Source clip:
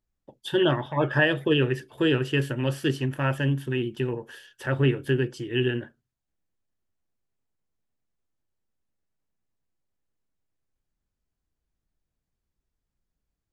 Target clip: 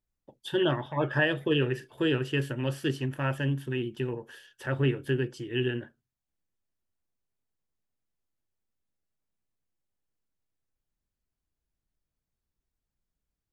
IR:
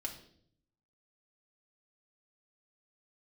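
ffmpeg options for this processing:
-filter_complex "[0:a]asettb=1/sr,asplit=3[link_01][link_02][link_03];[link_01]atrim=end=1.384[link_04];[link_02]atrim=start=1.38:end=2.05,asetpts=PTS-STARTPTS,afade=type=in:duration=0.004:curve=qsin,afade=type=out:start_time=0.666:duration=0.004:curve=qsin,asplit=2[link_05][link_06];[link_06]adelay=41,volume=-13.5dB[link_07];[link_05][link_07]amix=inputs=2:normalize=0,atrim=end_sample=29547[link_08];[link_03]atrim=start=2.046[link_09];[link_04][link_08]acrossfade=duration=0.004:curve1=hsin:curve2=qsin[link_10];[link_10][link_09]acrossfade=duration=0.004:curve1=qsin:curve2=hsin,volume=-4dB"

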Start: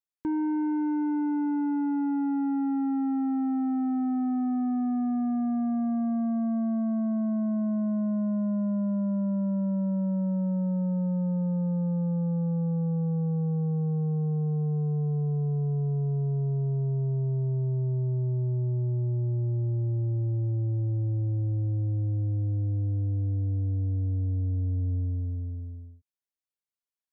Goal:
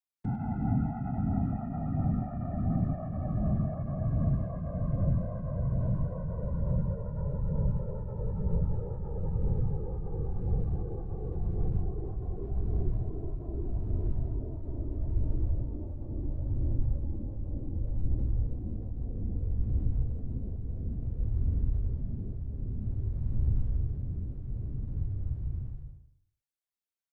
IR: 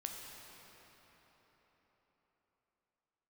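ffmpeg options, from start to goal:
-af "aecho=1:1:102|204|306|408:0.473|0.175|0.0648|0.024,afftfilt=real='hypot(re,im)*cos(2*PI*random(0))':imag='hypot(re,im)*sin(2*PI*random(1))':win_size=512:overlap=0.75,afreqshift=-140,volume=2dB"

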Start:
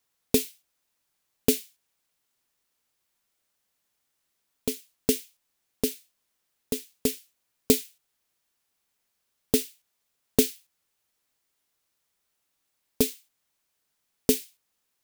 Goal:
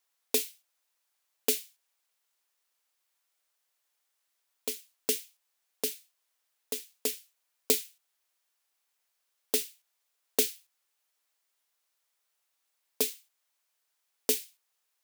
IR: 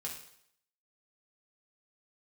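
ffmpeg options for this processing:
-af "highpass=550,volume=-1.5dB"

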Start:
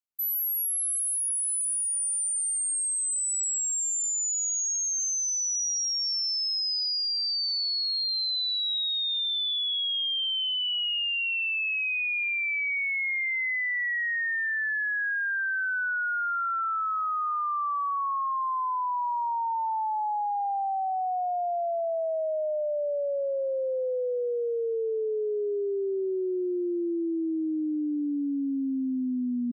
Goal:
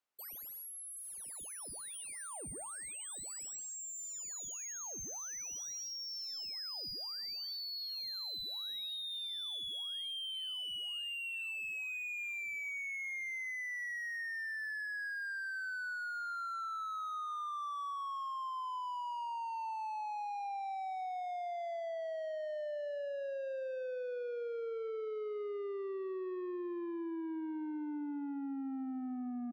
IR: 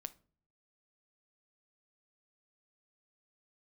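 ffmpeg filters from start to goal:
-filter_complex "[0:a]asplit=2[link_01][link_02];[link_02]highpass=frequency=720:poles=1,volume=21dB,asoftclip=type=tanh:threshold=-25dB[link_03];[link_01][link_03]amix=inputs=2:normalize=0,lowpass=frequency=1100:poles=1,volume=-6dB,aecho=1:1:367:0.112,asplit=2[link_04][link_05];[1:a]atrim=start_sample=2205[link_06];[link_05][link_06]afir=irnorm=-1:irlink=0,volume=-4dB[link_07];[link_04][link_07]amix=inputs=2:normalize=0,acompressor=threshold=-35dB:ratio=6,volume=-4dB"

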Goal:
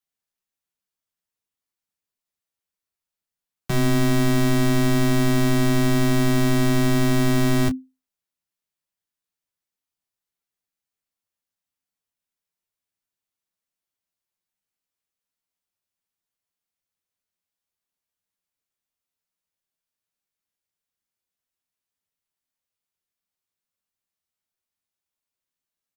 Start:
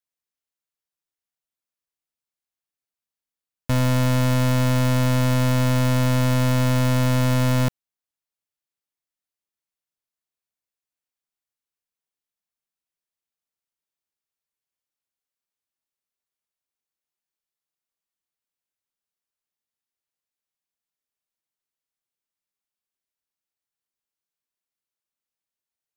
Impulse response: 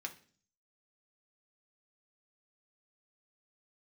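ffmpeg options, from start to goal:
-filter_complex "[0:a]afreqshift=-260,asplit=2[link_01][link_02];[link_02]aecho=0:1:11|30:0.596|0.237[link_03];[link_01][link_03]amix=inputs=2:normalize=0"

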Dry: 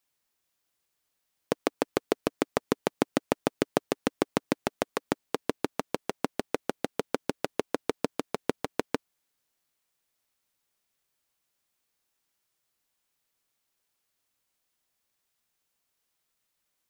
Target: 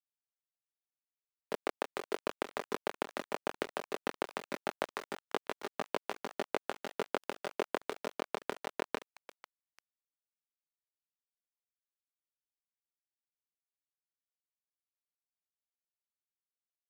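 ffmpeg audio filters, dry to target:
ffmpeg -i in.wav -filter_complex "[0:a]aecho=1:1:5:0.37,acrossover=split=320|4000[link_01][link_02][link_03];[link_01]acompressor=threshold=-37dB:ratio=4[link_04];[link_02]acompressor=threshold=-29dB:ratio=4[link_05];[link_03]acompressor=threshold=-49dB:ratio=4[link_06];[link_04][link_05][link_06]amix=inputs=3:normalize=0,asplit=2[link_07][link_08];[link_08]aeval=exprs='sgn(val(0))*max(abs(val(0))-0.0126,0)':channel_layout=same,volume=-8.5dB[link_09];[link_07][link_09]amix=inputs=2:normalize=0,flanger=delay=19:depth=6.5:speed=0.17,asplit=4[link_10][link_11][link_12][link_13];[link_11]adelay=495,afreqshift=32,volume=-21dB[link_14];[link_12]adelay=990,afreqshift=64,volume=-28.5dB[link_15];[link_13]adelay=1485,afreqshift=96,volume=-36.1dB[link_16];[link_10][link_14][link_15][link_16]amix=inputs=4:normalize=0,tremolo=f=55:d=0.788,acrusher=bits=7:mix=0:aa=0.000001,asplit=2[link_17][link_18];[link_18]highpass=frequency=720:poles=1,volume=13dB,asoftclip=type=tanh:threshold=-14dB[link_19];[link_17][link_19]amix=inputs=2:normalize=0,lowpass=frequency=4800:poles=1,volume=-6dB,volume=-2.5dB" out.wav

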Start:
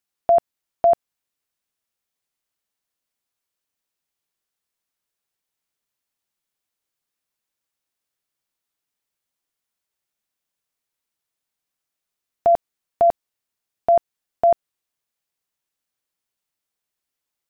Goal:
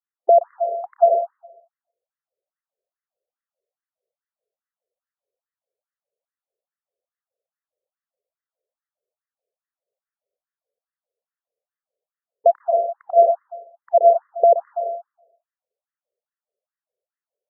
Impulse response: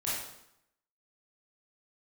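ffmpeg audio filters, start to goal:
-filter_complex "[0:a]lowshelf=frequency=690:width_type=q:width=3:gain=10,asplit=2[link_01][link_02];[1:a]atrim=start_sample=2205,adelay=123[link_03];[link_02][link_03]afir=irnorm=-1:irlink=0,volume=-6.5dB[link_04];[link_01][link_04]amix=inputs=2:normalize=0,afftfilt=real='re*between(b*sr/1024,510*pow(1500/510,0.5+0.5*sin(2*PI*2.4*pts/sr))/1.41,510*pow(1500/510,0.5+0.5*sin(2*PI*2.4*pts/sr))*1.41)':imag='im*between(b*sr/1024,510*pow(1500/510,0.5+0.5*sin(2*PI*2.4*pts/sr))/1.41,510*pow(1500/510,0.5+0.5*sin(2*PI*2.4*pts/sr))*1.41)':win_size=1024:overlap=0.75,volume=-2.5dB"

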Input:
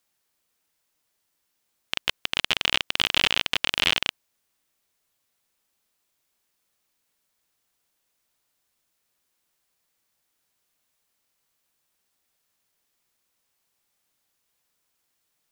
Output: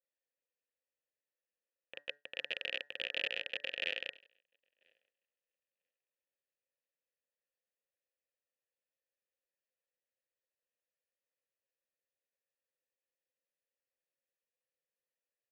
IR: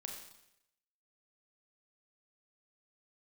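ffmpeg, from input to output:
-filter_complex "[0:a]asplit=3[link_01][link_02][link_03];[link_01]bandpass=frequency=530:width_type=q:width=8,volume=0dB[link_04];[link_02]bandpass=frequency=1840:width_type=q:width=8,volume=-6dB[link_05];[link_03]bandpass=frequency=2480:width_type=q:width=8,volume=-9dB[link_06];[link_04][link_05][link_06]amix=inputs=3:normalize=0,acompressor=mode=upward:threshold=-39dB:ratio=2.5,highshelf=frequency=2300:gain=-7,bandreject=frequency=144.6:width_type=h:width=4,bandreject=frequency=289.2:width_type=h:width=4,bandreject=frequency=433.8:width_type=h:width=4,bandreject=frequency=578.4:width_type=h:width=4,bandreject=frequency=723:width_type=h:width=4,bandreject=frequency=867.6:width_type=h:width=4,bandreject=frequency=1012.2:width_type=h:width=4,bandreject=frequency=1156.8:width_type=h:width=4,bandreject=frequency=1301.4:width_type=h:width=4,bandreject=frequency=1446:width_type=h:width=4,bandreject=frequency=1590.6:width_type=h:width=4,bandreject=frequency=1735.2:width_type=h:width=4,bandreject=frequency=1879.8:width_type=h:width=4,asplit=2[link_07][link_08];[link_08]aecho=0:1:989|1978|2967:0.133|0.048|0.0173[link_09];[link_07][link_09]amix=inputs=2:normalize=0,agate=range=-33dB:threshold=-43dB:ratio=3:detection=peak,adynamicequalizer=threshold=0.00251:dfrequency=1800:dqfactor=0.7:tfrequency=1800:tqfactor=0.7:attack=5:release=100:ratio=0.375:range=2.5:mode=boostabove:tftype=highshelf,volume=-2dB"

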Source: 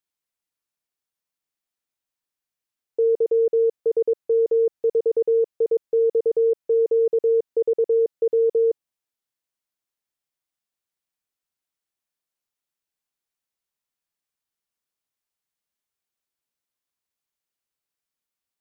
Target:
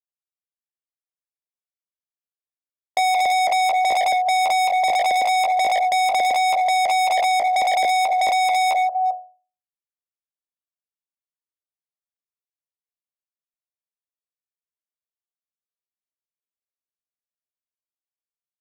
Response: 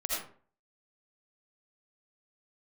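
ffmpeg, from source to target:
-filter_complex "[0:a]dynaudnorm=framelen=140:gausssize=11:maxgain=5dB,equalizer=frequency=470:width_type=o:width=1.2:gain=6.5,aecho=1:1:2.9:0.83,aecho=1:1:400:0.266,agate=range=-33dB:threshold=-12dB:ratio=3:detection=peak,equalizer=frequency=210:width_type=o:width=1.4:gain=6,bandreject=frequency=50:width_type=h:width=6,bandreject=frequency=100:width_type=h:width=6,bandreject=frequency=150:width_type=h:width=6,bandreject=frequency=200:width_type=h:width=6,bandreject=frequency=250:width_type=h:width=6,bandreject=frequency=300:width_type=h:width=6,bandreject=frequency=350:width_type=h:width=6,bandreject=frequency=400:width_type=h:width=6,bandreject=frequency=450:width_type=h:width=6,bandreject=frequency=500:width_type=h:width=6,volume=21.5dB,asoftclip=hard,volume=-21.5dB,acrossover=split=150|580[link_01][link_02][link_03];[link_01]acompressor=threshold=-56dB:ratio=4[link_04];[link_02]acompressor=threshold=-28dB:ratio=4[link_05];[link_03]acompressor=threshold=-30dB:ratio=4[link_06];[link_04][link_05][link_06]amix=inputs=3:normalize=0,asetrate=72056,aresample=44100,atempo=0.612027,volume=7dB"

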